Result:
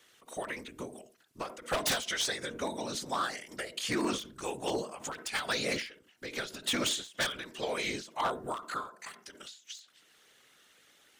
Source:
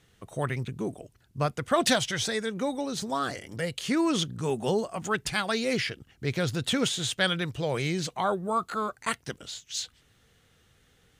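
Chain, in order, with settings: high-pass 210 Hz 24 dB/octave; tilt shelf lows -5 dB, about 680 Hz; whisper effect; in parallel at -2 dB: compression, threshold -41 dBFS, peak gain reduction 22 dB; on the sum: wavefolder -17.5 dBFS; on a send at -17.5 dB: reverberation RT60 0.30 s, pre-delay 46 ms; on the sum: endings held to a fixed fall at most 130 dB/s; trim -5.5 dB

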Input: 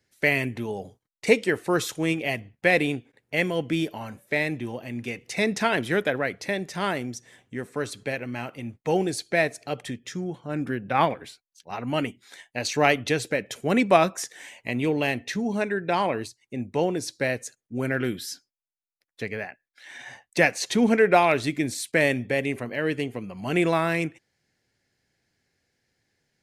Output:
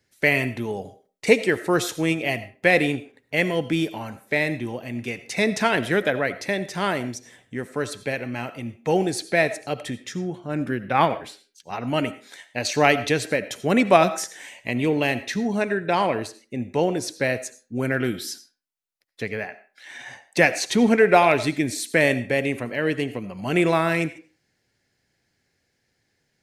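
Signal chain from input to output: on a send: high-pass 230 Hz 24 dB/octave + reverberation RT60 0.35 s, pre-delay 45 ms, DRR 14 dB; on the sum: trim +2.5 dB

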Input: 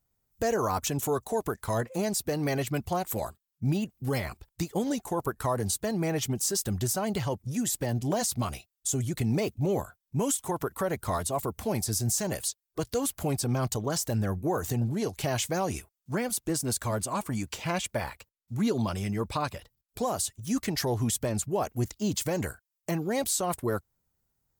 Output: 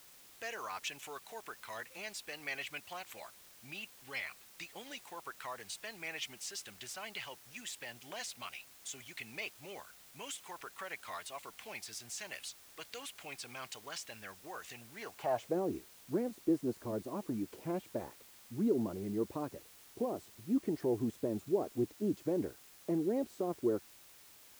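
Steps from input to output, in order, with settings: band-pass sweep 2.5 kHz -> 340 Hz, 14.91–15.58 s; word length cut 10-bit, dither triangular; trim +1.5 dB

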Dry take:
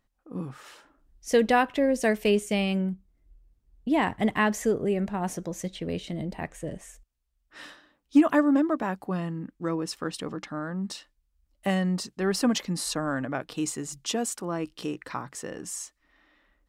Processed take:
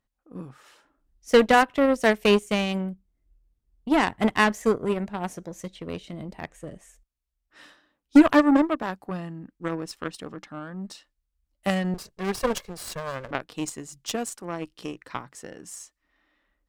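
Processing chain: 11.94–13.31 s: comb filter that takes the minimum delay 1.8 ms; Chebyshev shaper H 2 -20 dB, 6 -43 dB, 7 -20 dB, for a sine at -9.5 dBFS; trim +4.5 dB

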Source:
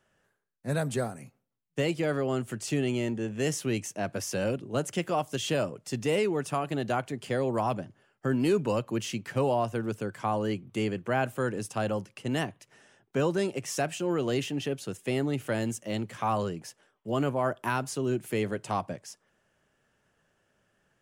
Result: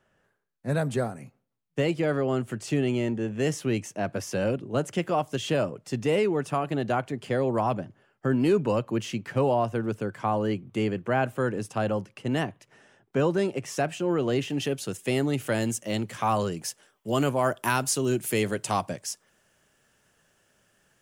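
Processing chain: treble shelf 3.7 kHz -7.5 dB, from 14.50 s +4.5 dB, from 16.52 s +11 dB; trim +3 dB

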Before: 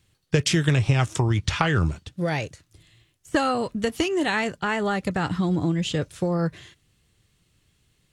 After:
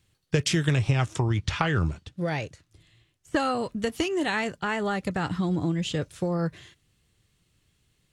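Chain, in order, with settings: 0.91–3.40 s: treble shelf 7.9 kHz -7.5 dB; trim -3 dB

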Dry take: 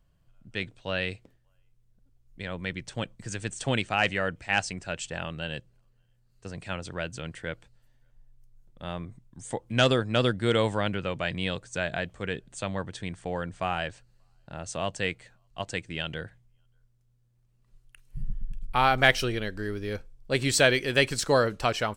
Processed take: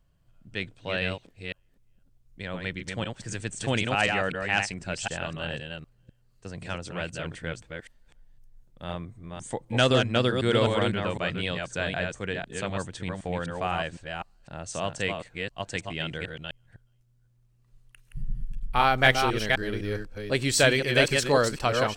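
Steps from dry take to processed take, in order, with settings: chunks repeated in reverse 254 ms, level -4 dB

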